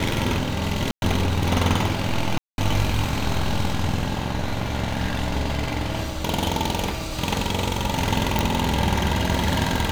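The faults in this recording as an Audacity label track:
0.910000	1.020000	drop-out 111 ms
2.380000	2.580000	drop-out 201 ms
8.390000	8.390000	click

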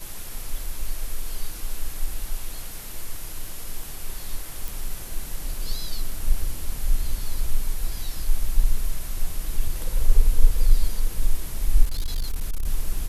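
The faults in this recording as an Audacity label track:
4.680000	4.680000	click
11.830000	12.650000	clipping −20.5 dBFS

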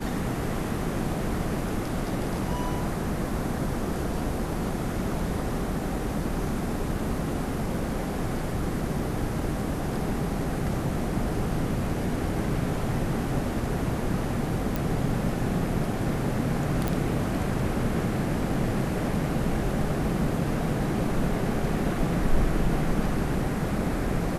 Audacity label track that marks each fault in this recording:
14.760000	14.760000	click
16.880000	16.880000	click

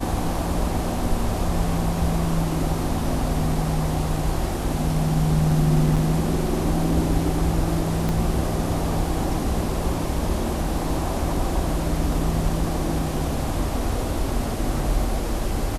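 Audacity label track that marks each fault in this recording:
5.960000	5.970000	drop-out 6.3 ms
8.090000	8.090000	click

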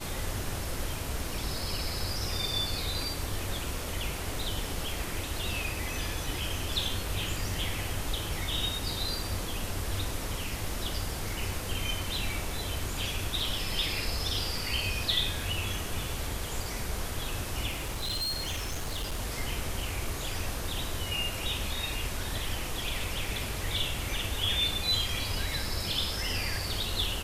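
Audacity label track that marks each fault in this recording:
17.700000	19.200000	clipping −29 dBFS

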